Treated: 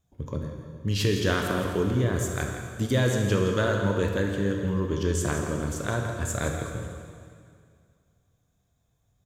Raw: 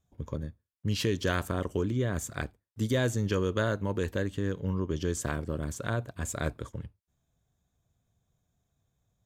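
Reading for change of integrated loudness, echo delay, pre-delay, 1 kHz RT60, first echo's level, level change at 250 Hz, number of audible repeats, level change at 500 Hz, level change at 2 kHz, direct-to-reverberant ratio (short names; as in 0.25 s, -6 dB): +4.5 dB, 0.166 s, 7 ms, 2.2 s, -10.0 dB, +4.5 dB, 1, +5.0 dB, +5.0 dB, 1.5 dB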